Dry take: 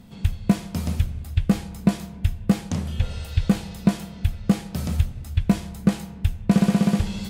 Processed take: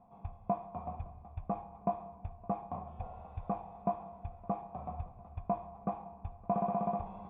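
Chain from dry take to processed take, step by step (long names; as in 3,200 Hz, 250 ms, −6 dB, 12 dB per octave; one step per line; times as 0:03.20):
formant resonators in series a
feedback echo with a long and a short gap by turns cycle 753 ms, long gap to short 3 to 1, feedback 70%, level −23 dB
level +7 dB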